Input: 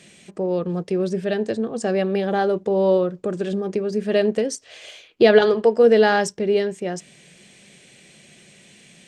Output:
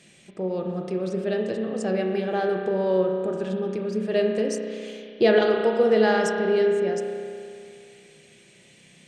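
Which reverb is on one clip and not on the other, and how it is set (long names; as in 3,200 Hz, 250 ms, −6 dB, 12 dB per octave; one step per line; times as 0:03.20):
spring reverb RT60 2.4 s, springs 32 ms, chirp 35 ms, DRR 2 dB
level −5.5 dB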